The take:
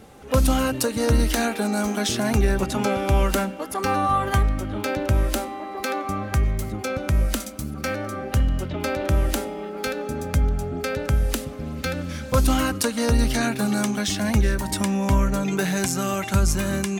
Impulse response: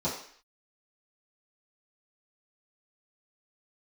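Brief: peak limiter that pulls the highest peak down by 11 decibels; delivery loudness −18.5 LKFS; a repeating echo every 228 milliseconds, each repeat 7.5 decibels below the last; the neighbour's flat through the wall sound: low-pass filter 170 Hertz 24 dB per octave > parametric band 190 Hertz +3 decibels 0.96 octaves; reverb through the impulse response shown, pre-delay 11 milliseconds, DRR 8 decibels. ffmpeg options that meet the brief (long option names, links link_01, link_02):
-filter_complex "[0:a]alimiter=limit=-18dB:level=0:latency=1,aecho=1:1:228|456|684|912|1140:0.422|0.177|0.0744|0.0312|0.0131,asplit=2[link_01][link_02];[1:a]atrim=start_sample=2205,adelay=11[link_03];[link_02][link_03]afir=irnorm=-1:irlink=0,volume=-16dB[link_04];[link_01][link_04]amix=inputs=2:normalize=0,lowpass=frequency=170:width=0.5412,lowpass=frequency=170:width=1.3066,equalizer=frequency=190:width_type=o:width=0.96:gain=3,volume=12dB"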